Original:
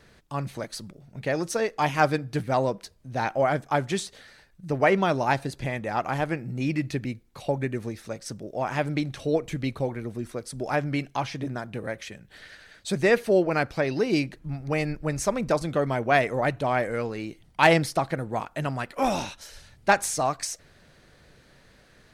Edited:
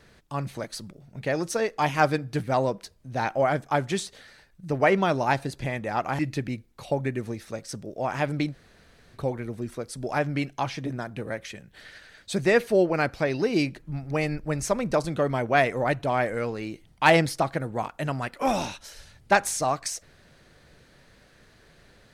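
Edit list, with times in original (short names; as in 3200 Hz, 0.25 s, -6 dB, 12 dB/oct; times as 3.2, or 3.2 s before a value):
6.19–6.76 cut
9.09–9.73 room tone, crossfade 0.06 s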